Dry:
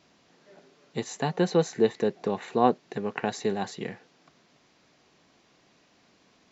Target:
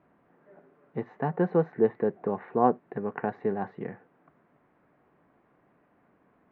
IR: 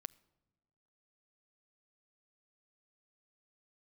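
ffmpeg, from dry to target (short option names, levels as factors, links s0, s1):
-filter_complex "[0:a]lowpass=f=1700:w=0.5412,lowpass=f=1700:w=1.3066,asplit=2[s0][s1];[1:a]atrim=start_sample=2205,atrim=end_sample=3528[s2];[s1][s2]afir=irnorm=-1:irlink=0,volume=1.78[s3];[s0][s3]amix=inputs=2:normalize=0,volume=0.447"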